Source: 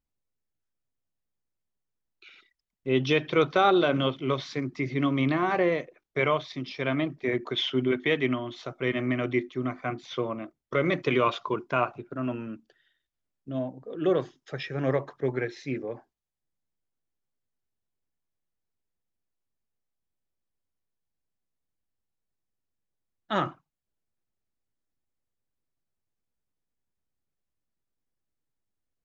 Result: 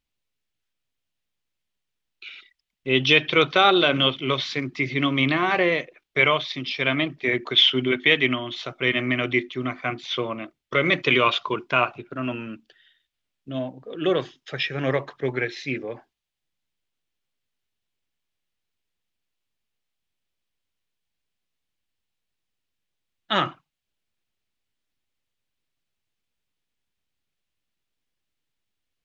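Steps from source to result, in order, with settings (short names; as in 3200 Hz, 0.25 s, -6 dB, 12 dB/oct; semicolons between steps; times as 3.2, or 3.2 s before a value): bell 3000 Hz +12 dB 1.6 oct; gain +1.5 dB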